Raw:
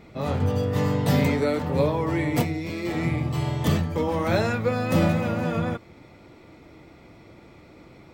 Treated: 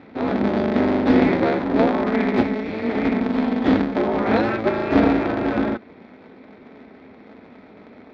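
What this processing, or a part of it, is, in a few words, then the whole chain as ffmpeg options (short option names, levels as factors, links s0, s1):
ring modulator pedal into a guitar cabinet: -af "aeval=exprs='val(0)*sgn(sin(2*PI*110*n/s))':c=same,highpass=110,equalizer=f=140:t=q:w=4:g=-9,equalizer=f=260:t=q:w=4:g=7,equalizer=f=1100:t=q:w=4:g=-4,equalizer=f=2900:t=q:w=4:g=-9,lowpass=f=3500:w=0.5412,lowpass=f=3500:w=1.3066,volume=1.58"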